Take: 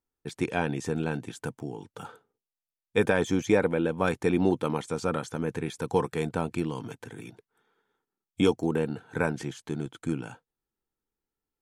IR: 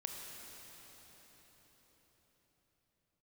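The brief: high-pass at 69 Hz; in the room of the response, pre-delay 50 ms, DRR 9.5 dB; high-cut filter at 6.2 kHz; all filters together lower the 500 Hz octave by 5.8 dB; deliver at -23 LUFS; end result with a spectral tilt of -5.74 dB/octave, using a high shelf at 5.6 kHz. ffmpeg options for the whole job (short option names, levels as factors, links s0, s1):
-filter_complex "[0:a]highpass=69,lowpass=6200,equalizer=f=500:t=o:g=-7,highshelf=f=5600:g=-5.5,asplit=2[s0][s1];[1:a]atrim=start_sample=2205,adelay=50[s2];[s1][s2]afir=irnorm=-1:irlink=0,volume=0.376[s3];[s0][s3]amix=inputs=2:normalize=0,volume=2.66"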